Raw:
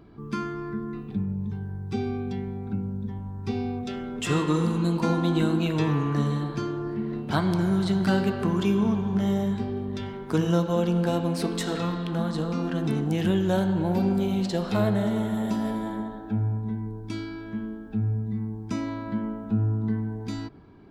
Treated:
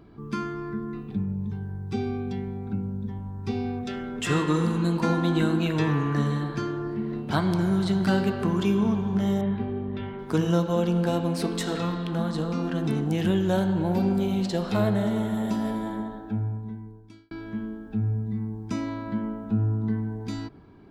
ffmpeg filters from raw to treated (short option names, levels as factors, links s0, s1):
-filter_complex "[0:a]asettb=1/sr,asplit=3[s0][s1][s2];[s0]atrim=end=3.644[s3];[s1]atrim=start=3.64:end=6.87,asetpts=PTS-STARTPTS,afade=t=in:d=0.004:c=qsin,afade=t=out:st=3.226:d=0.004:c=qsin,equalizer=f=1700:t=o:w=0.5:g=5.5[s4];[s2]atrim=start=6.866[s5];[s3][s4]acrossfade=d=0.004:c1=hsin:c2=qsin[s6];[s6][s5]acrossfade=d=0.004:c1=qsin:c2=hsin,asettb=1/sr,asplit=3[s7][s8][s9];[s7]atrim=end=9.414[s10];[s8]atrim=start=9.41:end=10.19,asetpts=PTS-STARTPTS,afade=t=in:d=0.004:c=qsin,afade=t=out:st=0.776:d=0.004:c=qsin,lowpass=f=3100:w=0.5412,lowpass=f=3100:w=1.3066[s11];[s9]atrim=start=10.186[s12];[s10][s11]acrossfade=d=0.004:c1=hsin:c2=qsin[s13];[s13][s12]acrossfade=d=0.004:c1=qsin:c2=hsin,asplit=2[s14][s15];[s14]atrim=end=17.31,asetpts=PTS-STARTPTS,afade=t=out:st=16.14:d=1.17[s16];[s15]atrim=start=17.31,asetpts=PTS-STARTPTS,afade=t=in:d=0.004:c=hsin[s17];[s16][s17]concat=n=2:v=0:a=1"